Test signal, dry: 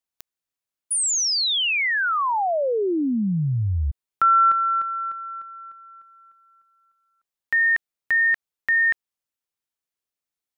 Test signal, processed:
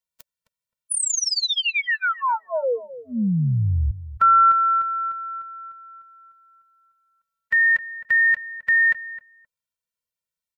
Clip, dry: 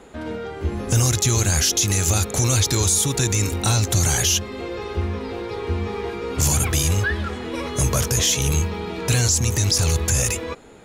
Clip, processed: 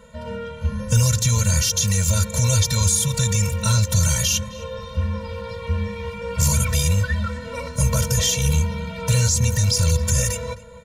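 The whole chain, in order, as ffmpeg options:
ffmpeg -i in.wav -filter_complex "[0:a]bandreject=frequency=580:width=12,asplit=2[link_01][link_02];[link_02]adelay=262,lowpass=frequency=1800:poles=1,volume=-14.5dB,asplit=2[link_03][link_04];[link_04]adelay=262,lowpass=frequency=1800:poles=1,volume=0.15[link_05];[link_01][link_03][link_05]amix=inputs=3:normalize=0,afftfilt=real='re*eq(mod(floor(b*sr/1024/220),2),0)':imag='im*eq(mod(floor(b*sr/1024/220),2),0)':win_size=1024:overlap=0.75,volume=2dB" out.wav

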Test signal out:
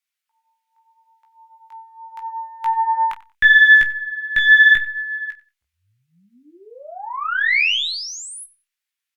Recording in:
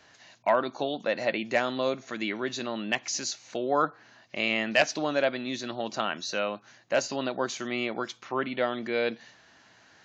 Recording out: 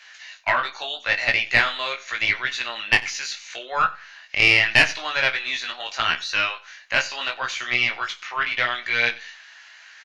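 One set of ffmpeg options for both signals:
ffmpeg -i in.wav -filter_complex "[0:a]acrossover=split=3500[link_01][link_02];[link_02]acompressor=threshold=-44dB:ratio=4:attack=1:release=60[link_03];[link_01][link_03]amix=inputs=2:normalize=0,highpass=1400,equalizer=frequency=2200:width_type=o:width=1.4:gain=7.5,aeval=exprs='(tanh(3.55*val(0)+0.65)-tanh(0.65))/3.55':channel_layout=same,flanger=delay=16:depth=4.5:speed=0.79,asplit=2[link_04][link_05];[link_05]adelay=30,volume=-14dB[link_06];[link_04][link_06]amix=inputs=2:normalize=0,aecho=1:1:92|184:0.0944|0.0189,alimiter=level_in=14.5dB:limit=-1dB:release=50:level=0:latency=1" -ar 48000 -c:a libopus -b:a 256k out.opus

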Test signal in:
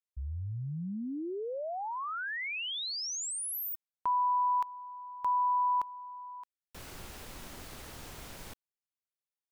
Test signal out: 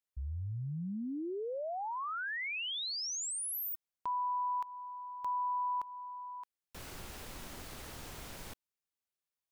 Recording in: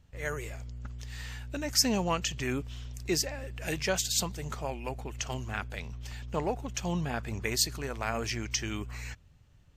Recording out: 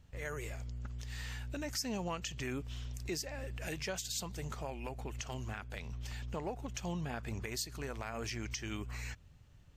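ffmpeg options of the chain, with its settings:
ffmpeg -i in.wav -af "acompressor=threshold=-34dB:ratio=3:attack=0.24:release=362:knee=6:detection=peak" out.wav

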